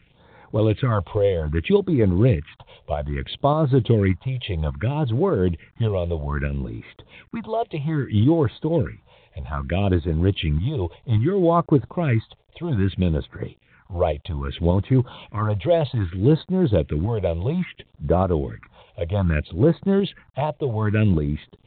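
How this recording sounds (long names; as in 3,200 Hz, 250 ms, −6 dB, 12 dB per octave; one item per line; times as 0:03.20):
tremolo saw up 1.7 Hz, depth 40%
a quantiser's noise floor 10 bits, dither none
phaser sweep stages 4, 0.62 Hz, lowest notch 230–2,900 Hz
mu-law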